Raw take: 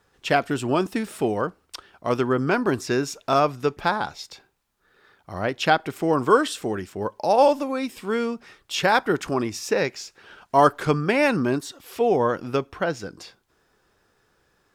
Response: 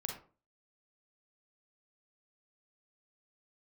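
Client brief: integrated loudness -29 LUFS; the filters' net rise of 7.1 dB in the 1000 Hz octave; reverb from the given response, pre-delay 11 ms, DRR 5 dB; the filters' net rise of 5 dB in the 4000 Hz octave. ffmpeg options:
-filter_complex "[0:a]equalizer=f=1k:t=o:g=9,equalizer=f=4k:t=o:g=6,asplit=2[a][b];[1:a]atrim=start_sample=2205,adelay=11[c];[b][c]afir=irnorm=-1:irlink=0,volume=-5dB[d];[a][d]amix=inputs=2:normalize=0,volume=-11dB"

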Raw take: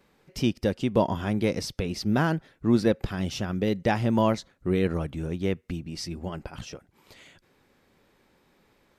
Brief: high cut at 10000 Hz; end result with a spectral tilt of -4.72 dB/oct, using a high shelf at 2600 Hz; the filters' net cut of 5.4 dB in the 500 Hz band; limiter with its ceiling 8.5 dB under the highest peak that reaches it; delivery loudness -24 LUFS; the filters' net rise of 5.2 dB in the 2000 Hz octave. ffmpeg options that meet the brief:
-af "lowpass=10k,equalizer=f=500:t=o:g=-7.5,equalizer=f=2k:t=o:g=4,highshelf=f=2.6k:g=7.5,volume=5.5dB,alimiter=limit=-11dB:level=0:latency=1"

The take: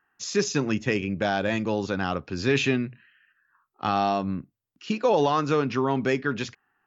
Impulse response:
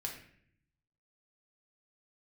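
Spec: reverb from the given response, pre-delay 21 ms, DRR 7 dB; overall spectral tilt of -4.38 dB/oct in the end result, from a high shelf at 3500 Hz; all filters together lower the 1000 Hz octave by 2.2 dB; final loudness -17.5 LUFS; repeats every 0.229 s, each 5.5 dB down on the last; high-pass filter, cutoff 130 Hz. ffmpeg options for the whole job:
-filter_complex "[0:a]highpass=130,equalizer=f=1k:t=o:g=-3.5,highshelf=f=3.5k:g=5,aecho=1:1:229|458|687|916|1145|1374|1603:0.531|0.281|0.149|0.079|0.0419|0.0222|0.0118,asplit=2[a][b];[1:a]atrim=start_sample=2205,adelay=21[c];[b][c]afir=irnorm=-1:irlink=0,volume=-7dB[d];[a][d]amix=inputs=2:normalize=0,volume=7dB"

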